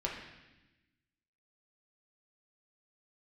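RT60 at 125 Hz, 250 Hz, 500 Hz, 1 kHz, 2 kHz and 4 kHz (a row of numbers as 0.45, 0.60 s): 1.5, 1.5, 1.0, 1.0, 1.2, 1.1 s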